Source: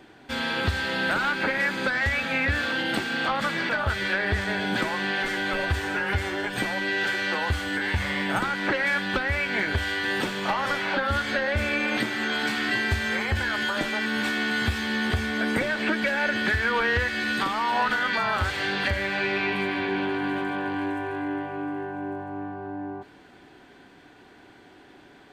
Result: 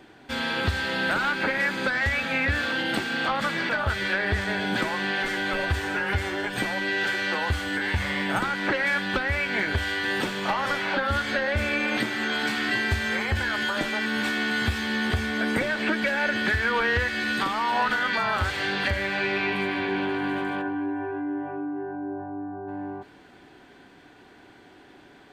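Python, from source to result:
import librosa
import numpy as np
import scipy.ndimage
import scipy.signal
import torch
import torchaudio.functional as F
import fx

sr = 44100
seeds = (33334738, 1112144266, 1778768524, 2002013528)

y = fx.spec_expand(x, sr, power=1.5, at=(20.61, 22.67), fade=0.02)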